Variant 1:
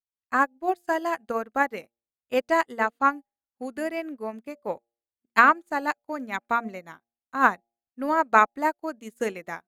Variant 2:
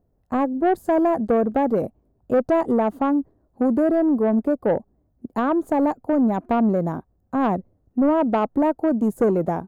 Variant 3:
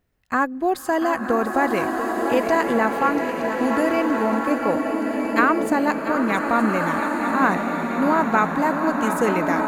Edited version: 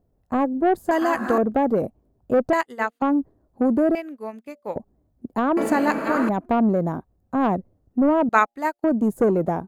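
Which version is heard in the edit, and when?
2
0.91–1.38 from 3
2.53–3.02 from 1
3.95–4.76 from 1
5.57–6.29 from 3
8.29–8.84 from 1

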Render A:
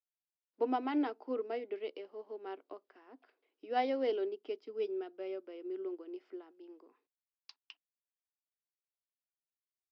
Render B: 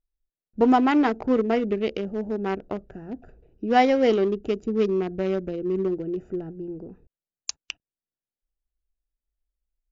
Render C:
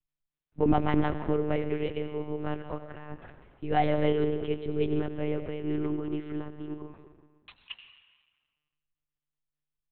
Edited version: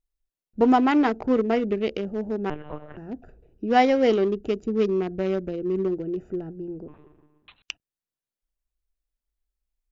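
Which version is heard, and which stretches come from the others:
B
2.5–2.97 from C
6.88–7.62 from C
not used: A

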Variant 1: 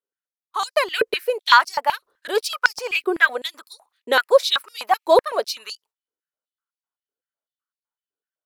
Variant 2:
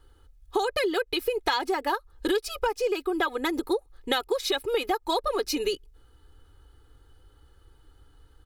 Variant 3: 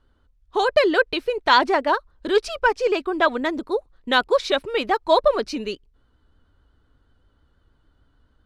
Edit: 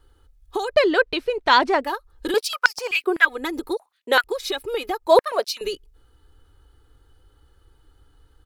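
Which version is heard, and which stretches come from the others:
2
0.74–1.84 from 3
2.34–3.25 from 1
3.77–4.24 from 1
5.07–5.61 from 1

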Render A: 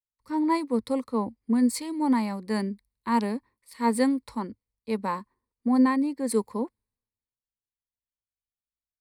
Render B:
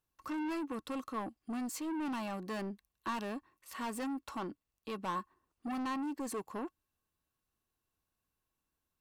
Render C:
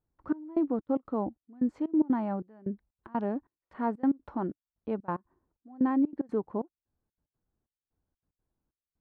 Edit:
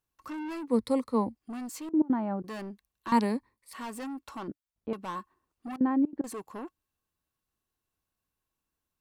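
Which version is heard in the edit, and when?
B
0.68–1.35 from A
1.89–2.44 from C
3.12–3.73 from A
4.48–4.93 from C
5.76–6.24 from C

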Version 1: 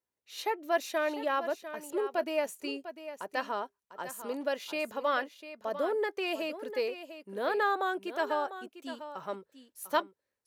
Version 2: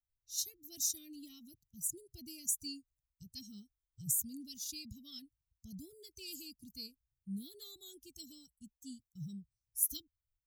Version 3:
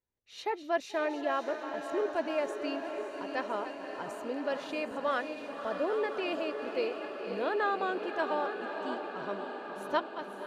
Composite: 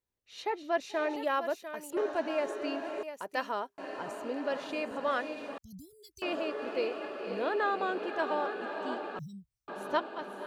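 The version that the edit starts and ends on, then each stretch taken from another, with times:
3
1.16–1.97 from 1
3.03–3.78 from 1
5.58–6.22 from 2
9.19–9.68 from 2

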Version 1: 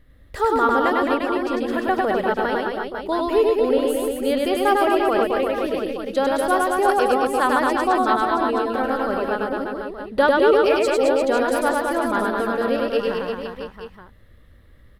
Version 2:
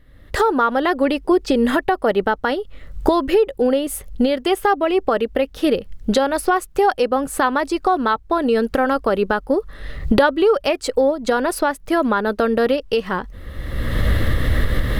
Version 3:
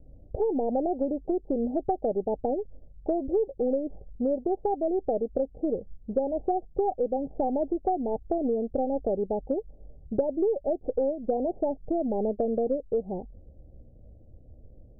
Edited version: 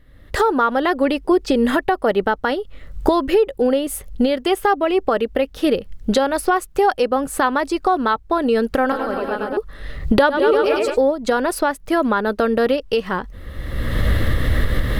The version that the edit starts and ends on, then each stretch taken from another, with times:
2
8.92–9.57 from 1
10.33–10.93 from 1, crossfade 0.10 s
not used: 3

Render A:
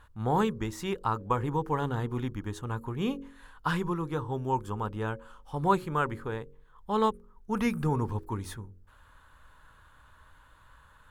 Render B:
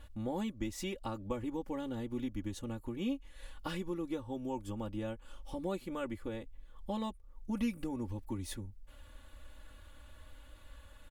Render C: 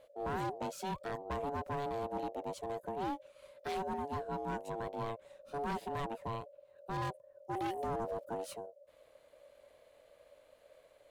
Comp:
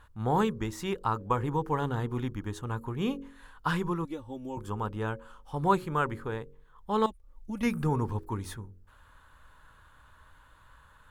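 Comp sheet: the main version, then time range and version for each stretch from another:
A
4.05–4.57 from B
7.06–7.63 from B
not used: C

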